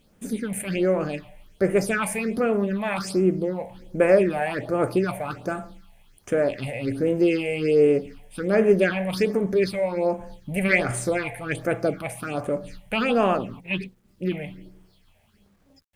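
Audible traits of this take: phasing stages 6, 1.3 Hz, lowest notch 330–4500 Hz; a quantiser's noise floor 12-bit, dither none

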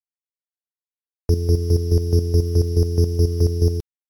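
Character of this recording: a buzz of ramps at a fixed pitch in blocks of 8 samples; chopped level 4.7 Hz, depth 65%, duty 30%; a quantiser's noise floor 10-bit, dither none; MP3

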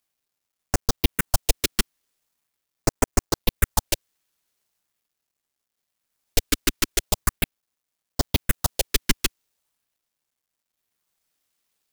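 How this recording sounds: phasing stages 4, 0.41 Hz, lowest notch 110–3700 Hz; a quantiser's noise floor 12-bit, dither none

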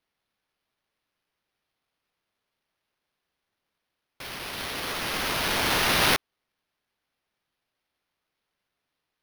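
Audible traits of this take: aliases and images of a low sample rate 7600 Hz, jitter 0%

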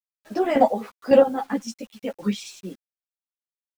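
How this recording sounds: chopped level 1.8 Hz, depth 60%, duty 20%; a quantiser's noise floor 10-bit, dither none; a shimmering, thickened sound

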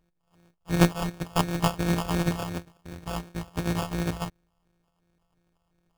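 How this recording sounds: a buzz of ramps at a fixed pitch in blocks of 256 samples; phasing stages 4, 2.8 Hz, lowest notch 300–1500 Hz; aliases and images of a low sample rate 2000 Hz, jitter 0%

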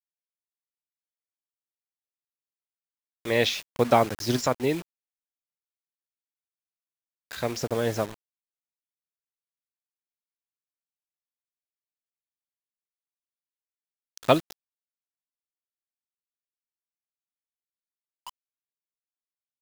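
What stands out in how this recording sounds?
a quantiser's noise floor 6-bit, dither none; tremolo saw up 0.68 Hz, depth 50%

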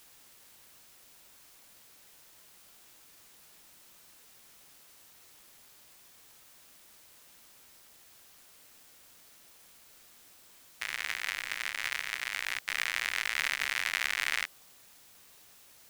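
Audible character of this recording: a quantiser's noise floor 10-bit, dither triangular

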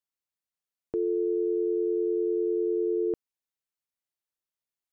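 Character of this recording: noise floor -93 dBFS; spectral tilt +15.5 dB/oct

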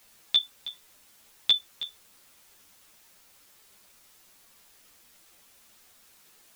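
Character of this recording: tremolo saw down 0.68 Hz, depth 75%; a quantiser's noise floor 10-bit, dither triangular; a shimmering, thickened sound

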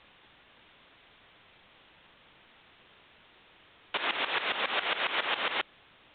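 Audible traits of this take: tremolo saw up 7.3 Hz, depth 85%; a quantiser's noise floor 10-bit, dither triangular; A-law

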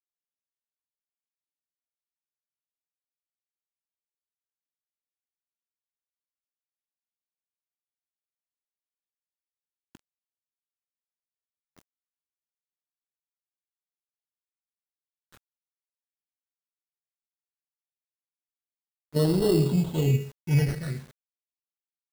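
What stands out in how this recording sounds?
aliases and images of a low sample rate 2400 Hz, jitter 0%; phasing stages 8, 0.17 Hz, lowest notch 600–2200 Hz; a quantiser's noise floor 8-bit, dither none

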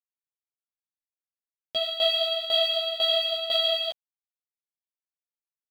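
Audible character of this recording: a quantiser's noise floor 8-bit, dither none; tremolo saw down 2 Hz, depth 80%; a shimmering, thickened sound

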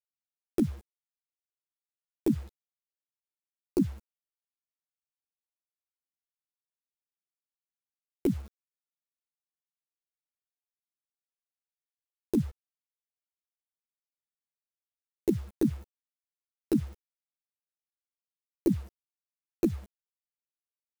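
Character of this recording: chopped level 0.54 Hz, depth 65%, duty 75%; a quantiser's noise floor 8-bit, dither none; a shimmering, thickened sound

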